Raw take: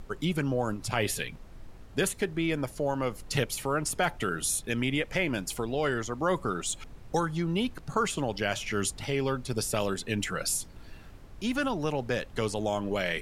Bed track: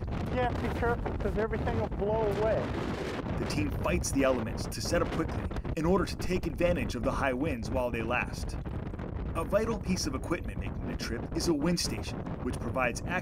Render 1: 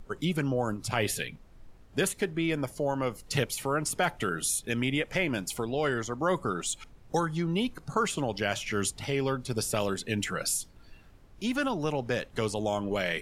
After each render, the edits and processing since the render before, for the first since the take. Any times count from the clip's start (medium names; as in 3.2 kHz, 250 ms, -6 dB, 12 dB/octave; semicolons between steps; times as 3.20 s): noise print and reduce 7 dB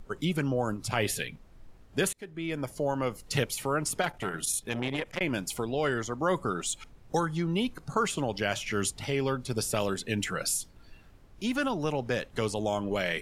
2.13–2.77 s: fade in, from -23.5 dB; 4.01–5.21 s: transformer saturation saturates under 1.2 kHz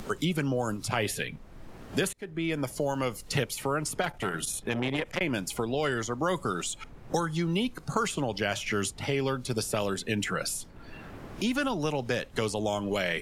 three bands compressed up and down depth 70%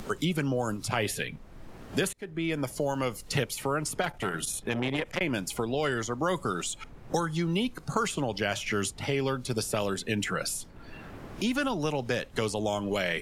no audible change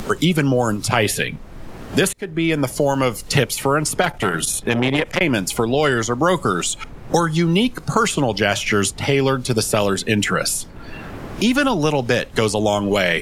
trim +11.5 dB; peak limiter -2 dBFS, peak gain reduction 1 dB